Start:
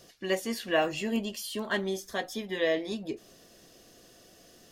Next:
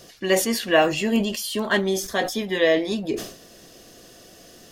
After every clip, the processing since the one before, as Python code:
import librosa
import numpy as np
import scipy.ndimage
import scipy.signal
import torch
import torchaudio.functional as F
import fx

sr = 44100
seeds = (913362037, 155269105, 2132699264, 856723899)

y = fx.sustainer(x, sr, db_per_s=96.0)
y = F.gain(torch.from_numpy(y), 8.5).numpy()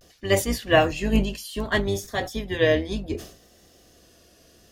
y = fx.octave_divider(x, sr, octaves=2, level_db=0.0)
y = fx.vibrato(y, sr, rate_hz=0.63, depth_cents=63.0)
y = fx.upward_expand(y, sr, threshold_db=-30.0, expansion=1.5)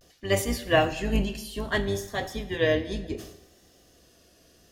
y = fx.rev_plate(x, sr, seeds[0], rt60_s=1.0, hf_ratio=0.9, predelay_ms=0, drr_db=11.0)
y = F.gain(torch.from_numpy(y), -3.5).numpy()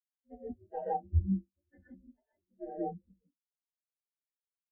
y = x * np.sin(2.0 * np.pi * 140.0 * np.arange(len(x)) / sr)
y = fx.rev_gated(y, sr, seeds[1], gate_ms=190, shape='rising', drr_db=-2.5)
y = fx.spectral_expand(y, sr, expansion=4.0)
y = F.gain(torch.from_numpy(y), -8.5).numpy()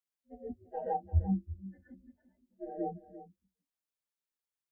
y = x + 10.0 ** (-14.5 / 20.0) * np.pad(x, (int(343 * sr / 1000.0), 0))[:len(x)]